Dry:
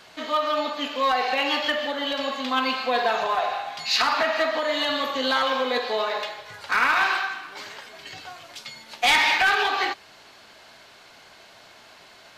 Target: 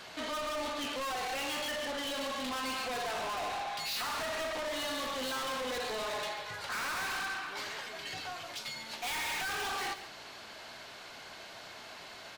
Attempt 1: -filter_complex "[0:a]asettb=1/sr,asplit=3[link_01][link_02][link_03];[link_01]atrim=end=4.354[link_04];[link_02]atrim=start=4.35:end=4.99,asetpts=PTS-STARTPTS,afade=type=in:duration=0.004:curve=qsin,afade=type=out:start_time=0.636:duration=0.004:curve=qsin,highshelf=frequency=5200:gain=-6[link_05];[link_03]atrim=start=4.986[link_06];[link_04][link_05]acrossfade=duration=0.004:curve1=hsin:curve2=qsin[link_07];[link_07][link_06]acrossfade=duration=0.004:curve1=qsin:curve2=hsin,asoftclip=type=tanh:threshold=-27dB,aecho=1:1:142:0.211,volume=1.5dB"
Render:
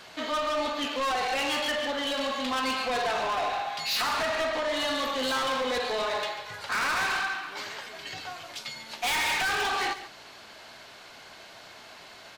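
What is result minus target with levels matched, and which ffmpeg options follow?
soft clipping: distortion −4 dB
-filter_complex "[0:a]asettb=1/sr,asplit=3[link_01][link_02][link_03];[link_01]atrim=end=4.354[link_04];[link_02]atrim=start=4.35:end=4.99,asetpts=PTS-STARTPTS,afade=type=in:duration=0.004:curve=qsin,afade=type=out:start_time=0.636:duration=0.004:curve=qsin,highshelf=frequency=5200:gain=-6[link_05];[link_03]atrim=start=4.986[link_06];[link_04][link_05]acrossfade=duration=0.004:curve1=hsin:curve2=qsin[link_07];[link_07][link_06]acrossfade=duration=0.004:curve1=qsin:curve2=hsin,asoftclip=type=tanh:threshold=-36.5dB,aecho=1:1:142:0.211,volume=1.5dB"

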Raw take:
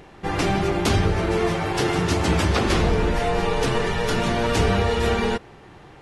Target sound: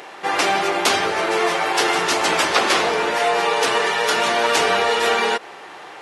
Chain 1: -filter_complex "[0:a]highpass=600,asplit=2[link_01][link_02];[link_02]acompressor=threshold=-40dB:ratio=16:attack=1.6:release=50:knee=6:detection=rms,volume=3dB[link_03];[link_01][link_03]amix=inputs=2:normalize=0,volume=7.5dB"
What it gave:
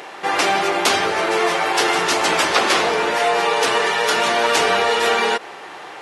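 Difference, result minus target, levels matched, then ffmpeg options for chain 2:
downward compressor: peak gain reduction −10 dB
-filter_complex "[0:a]highpass=600,asplit=2[link_01][link_02];[link_02]acompressor=threshold=-50.5dB:ratio=16:attack=1.6:release=50:knee=6:detection=rms,volume=3dB[link_03];[link_01][link_03]amix=inputs=2:normalize=0,volume=7.5dB"

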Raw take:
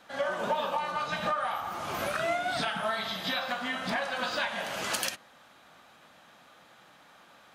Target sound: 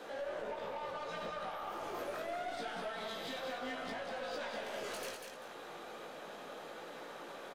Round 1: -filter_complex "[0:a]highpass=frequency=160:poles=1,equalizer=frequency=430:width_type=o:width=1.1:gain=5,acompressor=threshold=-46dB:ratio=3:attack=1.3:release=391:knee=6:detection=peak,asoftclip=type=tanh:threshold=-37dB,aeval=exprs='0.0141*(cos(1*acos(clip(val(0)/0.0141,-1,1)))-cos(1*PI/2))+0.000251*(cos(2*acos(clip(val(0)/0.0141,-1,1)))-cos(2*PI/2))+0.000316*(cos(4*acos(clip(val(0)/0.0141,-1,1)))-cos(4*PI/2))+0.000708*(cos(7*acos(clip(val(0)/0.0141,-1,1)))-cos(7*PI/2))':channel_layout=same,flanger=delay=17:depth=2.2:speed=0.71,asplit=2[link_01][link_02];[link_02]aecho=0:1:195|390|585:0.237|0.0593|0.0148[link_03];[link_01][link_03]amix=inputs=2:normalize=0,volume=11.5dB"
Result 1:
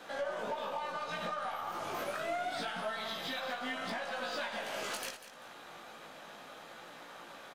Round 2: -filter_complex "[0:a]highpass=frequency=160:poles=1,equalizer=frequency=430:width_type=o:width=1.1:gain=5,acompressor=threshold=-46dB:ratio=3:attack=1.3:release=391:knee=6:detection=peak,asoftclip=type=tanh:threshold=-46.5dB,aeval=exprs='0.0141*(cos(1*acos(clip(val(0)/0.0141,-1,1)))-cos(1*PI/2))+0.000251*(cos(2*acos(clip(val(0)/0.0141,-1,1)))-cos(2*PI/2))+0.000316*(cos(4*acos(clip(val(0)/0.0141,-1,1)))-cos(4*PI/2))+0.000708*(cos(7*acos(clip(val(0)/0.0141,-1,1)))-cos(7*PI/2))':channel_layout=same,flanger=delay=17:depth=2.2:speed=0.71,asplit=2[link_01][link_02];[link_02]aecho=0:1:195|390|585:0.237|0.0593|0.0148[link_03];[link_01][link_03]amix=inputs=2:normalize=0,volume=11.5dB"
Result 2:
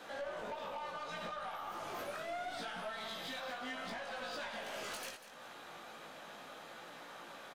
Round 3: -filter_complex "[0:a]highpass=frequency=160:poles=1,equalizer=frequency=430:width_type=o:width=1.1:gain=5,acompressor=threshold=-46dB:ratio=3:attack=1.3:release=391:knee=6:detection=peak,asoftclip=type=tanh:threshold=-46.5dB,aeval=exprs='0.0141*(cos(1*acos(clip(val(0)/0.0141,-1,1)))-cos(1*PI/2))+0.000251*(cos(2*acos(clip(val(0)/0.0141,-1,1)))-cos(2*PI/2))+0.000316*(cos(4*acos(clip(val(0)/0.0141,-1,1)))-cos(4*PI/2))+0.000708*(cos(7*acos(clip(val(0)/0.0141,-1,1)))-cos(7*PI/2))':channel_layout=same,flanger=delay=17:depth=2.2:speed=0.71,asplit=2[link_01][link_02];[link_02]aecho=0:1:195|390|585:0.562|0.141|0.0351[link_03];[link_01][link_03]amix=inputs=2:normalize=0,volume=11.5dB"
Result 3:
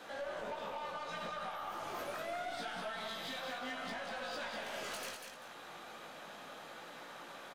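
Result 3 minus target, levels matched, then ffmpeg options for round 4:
500 Hz band −2.5 dB
-filter_complex "[0:a]highpass=frequency=160:poles=1,equalizer=frequency=430:width_type=o:width=1.1:gain=14.5,acompressor=threshold=-46dB:ratio=3:attack=1.3:release=391:knee=6:detection=peak,asoftclip=type=tanh:threshold=-46.5dB,aeval=exprs='0.0141*(cos(1*acos(clip(val(0)/0.0141,-1,1)))-cos(1*PI/2))+0.000251*(cos(2*acos(clip(val(0)/0.0141,-1,1)))-cos(2*PI/2))+0.000316*(cos(4*acos(clip(val(0)/0.0141,-1,1)))-cos(4*PI/2))+0.000708*(cos(7*acos(clip(val(0)/0.0141,-1,1)))-cos(7*PI/2))':channel_layout=same,flanger=delay=17:depth=2.2:speed=0.71,asplit=2[link_01][link_02];[link_02]aecho=0:1:195|390|585:0.562|0.141|0.0351[link_03];[link_01][link_03]amix=inputs=2:normalize=0,volume=11.5dB"

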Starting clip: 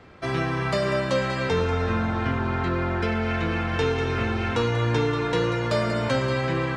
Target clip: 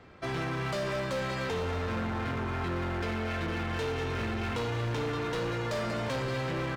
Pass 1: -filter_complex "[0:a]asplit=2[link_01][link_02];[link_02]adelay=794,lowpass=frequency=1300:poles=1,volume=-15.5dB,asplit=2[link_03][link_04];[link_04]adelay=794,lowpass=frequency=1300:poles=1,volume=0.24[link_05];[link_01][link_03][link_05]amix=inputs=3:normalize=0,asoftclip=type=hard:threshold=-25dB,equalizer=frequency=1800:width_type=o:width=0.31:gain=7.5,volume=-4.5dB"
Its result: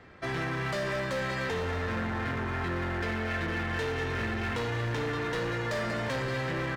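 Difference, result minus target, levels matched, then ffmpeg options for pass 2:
2,000 Hz band +3.0 dB
-filter_complex "[0:a]asplit=2[link_01][link_02];[link_02]adelay=794,lowpass=frequency=1300:poles=1,volume=-15.5dB,asplit=2[link_03][link_04];[link_04]adelay=794,lowpass=frequency=1300:poles=1,volume=0.24[link_05];[link_01][link_03][link_05]amix=inputs=3:normalize=0,asoftclip=type=hard:threshold=-25dB,volume=-4.5dB"

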